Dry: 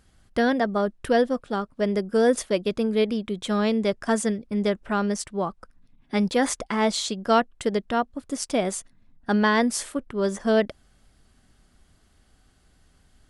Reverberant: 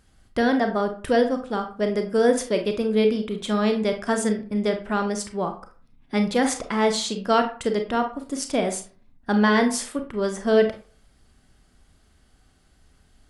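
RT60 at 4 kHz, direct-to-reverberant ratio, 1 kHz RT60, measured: 0.25 s, 5.5 dB, 0.45 s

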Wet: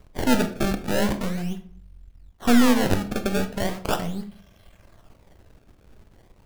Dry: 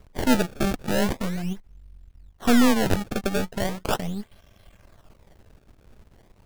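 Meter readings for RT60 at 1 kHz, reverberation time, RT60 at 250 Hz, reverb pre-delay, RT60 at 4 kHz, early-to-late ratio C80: 0.50 s, 0.55 s, 0.60 s, 24 ms, 0.30 s, 16.5 dB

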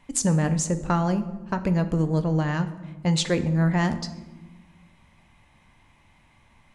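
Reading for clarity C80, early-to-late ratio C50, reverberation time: 15.0 dB, 13.0 dB, 1.2 s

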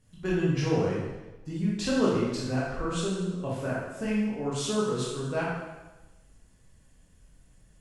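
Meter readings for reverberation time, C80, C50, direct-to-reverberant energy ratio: 1.1 s, 2.0 dB, -0.5 dB, -7.0 dB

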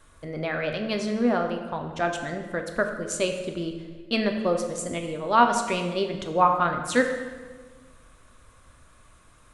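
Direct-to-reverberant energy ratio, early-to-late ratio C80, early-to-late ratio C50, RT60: 4.0 dB, 8.5 dB, 6.5 dB, 1.5 s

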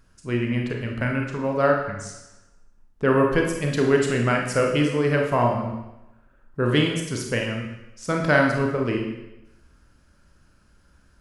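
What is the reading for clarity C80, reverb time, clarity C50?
7.0 dB, 0.95 s, 4.0 dB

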